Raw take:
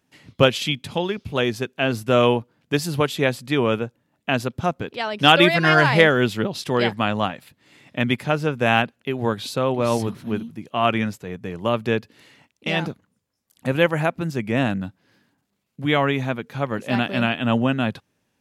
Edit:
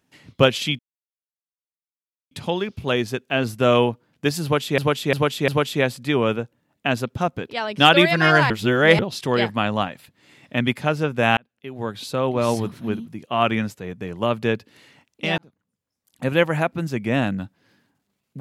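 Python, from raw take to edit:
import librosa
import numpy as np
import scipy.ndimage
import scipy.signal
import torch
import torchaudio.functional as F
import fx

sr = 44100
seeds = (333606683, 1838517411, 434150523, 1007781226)

y = fx.edit(x, sr, fx.insert_silence(at_s=0.79, length_s=1.52),
    fx.repeat(start_s=2.91, length_s=0.35, count=4),
    fx.reverse_span(start_s=5.93, length_s=0.49),
    fx.fade_in_span(start_s=8.8, length_s=0.92),
    fx.fade_in_span(start_s=12.81, length_s=0.98), tone=tone)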